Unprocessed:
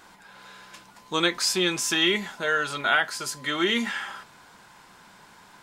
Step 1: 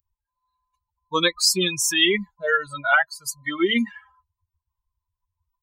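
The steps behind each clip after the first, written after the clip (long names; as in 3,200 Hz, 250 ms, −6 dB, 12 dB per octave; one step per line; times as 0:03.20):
spectral dynamics exaggerated over time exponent 3
high-shelf EQ 7,800 Hz +5.5 dB
level +8 dB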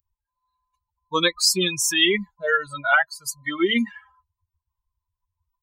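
no processing that can be heard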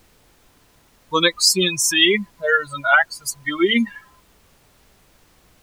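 tape wow and flutter 18 cents
background noise pink −59 dBFS
level +3.5 dB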